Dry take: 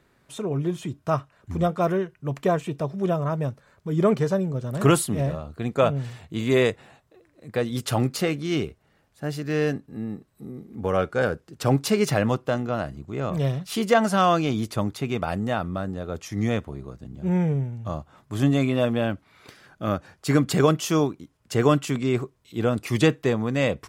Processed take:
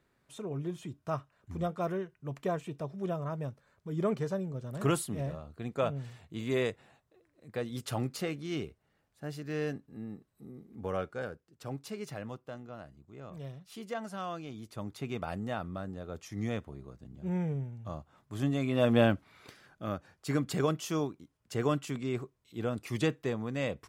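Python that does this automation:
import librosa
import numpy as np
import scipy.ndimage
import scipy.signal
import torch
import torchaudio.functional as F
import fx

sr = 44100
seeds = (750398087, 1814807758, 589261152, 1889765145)

y = fx.gain(x, sr, db=fx.line((10.93, -10.5), (11.48, -19.0), (14.6, -19.0), (15.02, -10.0), (18.62, -10.0), (19.0, 1.0), (19.89, -10.5)))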